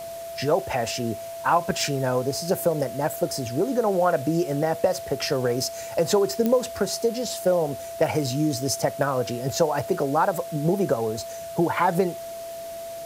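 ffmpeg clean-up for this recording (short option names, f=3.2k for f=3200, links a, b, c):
-af "adeclick=t=4,bandreject=f=670:w=30,afwtdn=0.0056"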